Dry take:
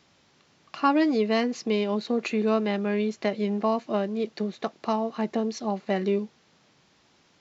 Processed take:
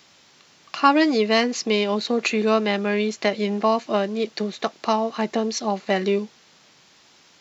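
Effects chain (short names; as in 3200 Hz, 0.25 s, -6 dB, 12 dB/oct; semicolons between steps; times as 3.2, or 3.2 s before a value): tilt +2 dB/oct; gain +6.5 dB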